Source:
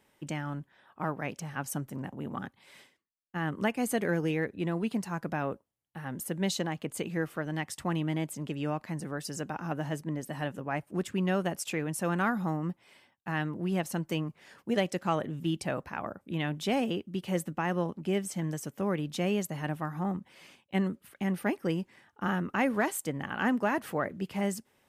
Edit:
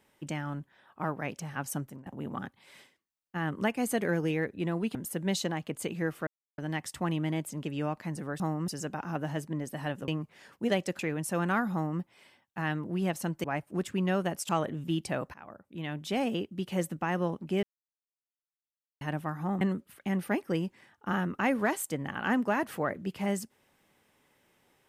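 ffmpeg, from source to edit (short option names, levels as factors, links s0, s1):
-filter_complex "[0:a]asplit=14[s0][s1][s2][s3][s4][s5][s6][s7][s8][s9][s10][s11][s12][s13];[s0]atrim=end=2.06,asetpts=PTS-STARTPTS,afade=t=out:st=1.81:d=0.25:silence=0.0630957[s14];[s1]atrim=start=2.06:end=4.952,asetpts=PTS-STARTPTS,afade=t=in:d=0.004:c=hsin:silence=0.0630957[s15];[s2]atrim=start=6.098:end=7.42,asetpts=PTS-STARTPTS,afade=t=out:st=1.318:d=0.004:c=hsin,apad=pad_dur=0.31[s16];[s3]atrim=start=7.42:end=9.242,asetpts=PTS-STARTPTS,afade=t=in:d=0.004:c=hsin[s17];[s4]atrim=start=12.428:end=12.712[s18];[s5]atrim=start=9.238:end=10.642[s19];[s6]atrim=start=14.138:end=15.052[s20];[s7]atrim=start=11.688:end=14.142[s21];[s8]atrim=start=10.638:end=11.692[s22];[s9]atrim=start=15.048:end=15.9,asetpts=PTS-STARTPTS,afade=t=out:st=0.848:d=0.004:c=hsin:silence=0.158489[s23];[s10]atrim=start=15.9:end=18.19,asetpts=PTS-STARTPTS,afade=t=in:d=1.04:silence=0.158489,afade=t=out:st=2.286:d=0.004:c=hsin[s24];[s11]atrim=start=18.19:end=19.57,asetpts=PTS-STARTPTS,volume=0[s25];[s12]atrim=start=19.57:end=20.172,asetpts=PTS-STARTPTS,afade=t=in:d=0.004:c=hsin[s26];[s13]atrim=start=20.758[s27];[s14][s15]concat=n=2:v=0:a=1[s28];[s16][s17]concat=n=2:v=0:a=1[s29];[s28][s29]acrossfade=d=0.004:c1=hsin:c2=hsin[s30];[s30][s18]acrossfade=d=0.004:c1=hsin:c2=hsin[s31];[s31][s19]acrossfade=d=0.004:c1=hsin:c2=hsin[s32];[s32][s20]acrossfade=d=0.004:c1=hsin:c2=hsin[s33];[s33][s21]acrossfade=d=0.004:c1=hsin:c2=hsin[s34];[s34][s22]acrossfade=d=0.004:c1=hsin:c2=hsin[s35];[s23][s24][s25][s26]concat=n=4:v=0:a=1[s36];[s35][s36]acrossfade=d=0.004:c1=hsin:c2=hsin[s37];[s37][s27]acrossfade=d=0.004:c1=hsin:c2=hsin"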